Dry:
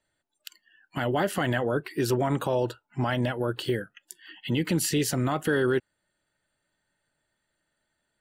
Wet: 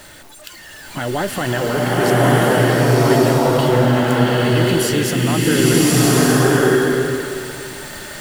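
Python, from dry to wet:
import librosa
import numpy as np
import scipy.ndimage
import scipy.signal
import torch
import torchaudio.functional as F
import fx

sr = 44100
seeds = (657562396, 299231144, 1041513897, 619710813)

y = x + 0.5 * 10.0 ** (-38.0 / 20.0) * np.sign(x)
y = fx.rev_bloom(y, sr, seeds[0], attack_ms=1200, drr_db=-8.0)
y = y * 10.0 ** (3.5 / 20.0)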